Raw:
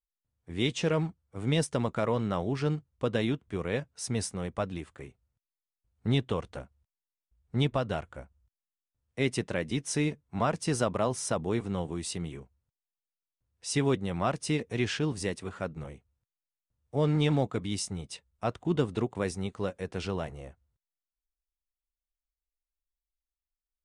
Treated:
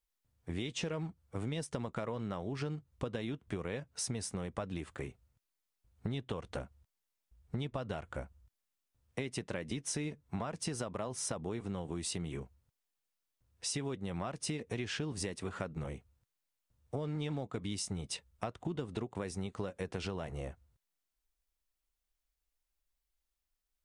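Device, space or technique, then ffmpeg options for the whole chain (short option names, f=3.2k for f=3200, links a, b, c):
serial compression, peaks first: -af "acompressor=threshold=-34dB:ratio=6,acompressor=threshold=-43dB:ratio=2.5,volume=6dB"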